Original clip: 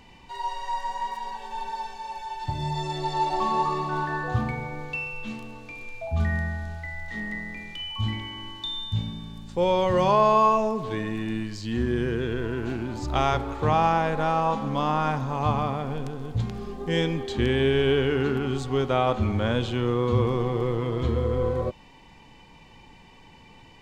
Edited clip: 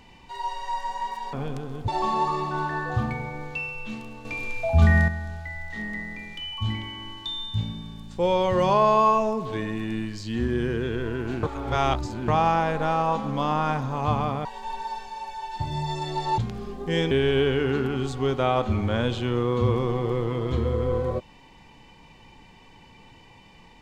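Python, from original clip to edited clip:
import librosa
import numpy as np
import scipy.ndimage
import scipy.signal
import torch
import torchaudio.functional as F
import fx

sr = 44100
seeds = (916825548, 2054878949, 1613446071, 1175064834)

y = fx.edit(x, sr, fx.swap(start_s=1.33, length_s=1.93, other_s=15.83, other_length_s=0.55),
    fx.clip_gain(start_s=5.63, length_s=0.83, db=8.0),
    fx.reverse_span(start_s=12.81, length_s=0.85),
    fx.cut(start_s=17.11, length_s=0.51), tone=tone)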